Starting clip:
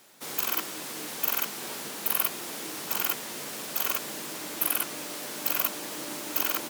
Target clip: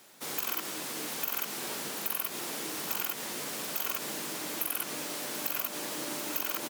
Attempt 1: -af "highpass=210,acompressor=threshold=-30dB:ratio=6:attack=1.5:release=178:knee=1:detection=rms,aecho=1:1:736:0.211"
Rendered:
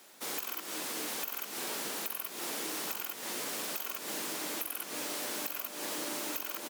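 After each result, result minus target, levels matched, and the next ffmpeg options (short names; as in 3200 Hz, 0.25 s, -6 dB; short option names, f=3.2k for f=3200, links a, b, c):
compressor: peak gain reduction +5.5 dB; 125 Hz band -4.0 dB
-af "highpass=210,acompressor=threshold=-23.5dB:ratio=6:attack=1.5:release=178:knee=1:detection=rms,aecho=1:1:736:0.211"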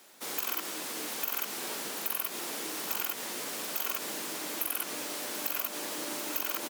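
125 Hz band -6.0 dB
-af "highpass=53,acompressor=threshold=-23.5dB:ratio=6:attack=1.5:release=178:knee=1:detection=rms,aecho=1:1:736:0.211"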